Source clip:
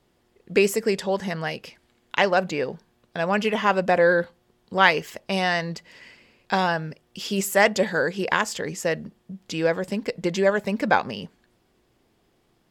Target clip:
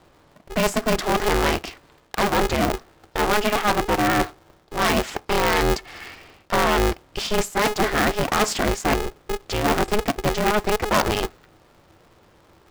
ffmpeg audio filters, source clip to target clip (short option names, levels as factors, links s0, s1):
-af "aemphasis=mode=reproduction:type=50fm,areverse,acompressor=threshold=0.0501:ratio=16,areverse,equalizer=f=125:t=o:w=1:g=9,equalizer=f=1000:t=o:w=1:g=9,equalizer=f=4000:t=o:w=1:g=3,equalizer=f=8000:t=o:w=1:g=6,aeval=exprs='0.237*(cos(1*acos(clip(val(0)/0.237,-1,1)))-cos(1*PI/2))+0.106*(cos(5*acos(clip(val(0)/0.237,-1,1)))-cos(5*PI/2))+0.0668*(cos(6*acos(clip(val(0)/0.237,-1,1)))-cos(6*PI/2))+0.0335*(cos(7*acos(clip(val(0)/0.237,-1,1)))-cos(7*PI/2))+0.0188*(cos(8*acos(clip(val(0)/0.237,-1,1)))-cos(8*PI/2))':c=same,aeval=exprs='val(0)*sgn(sin(2*PI*210*n/s))':c=same"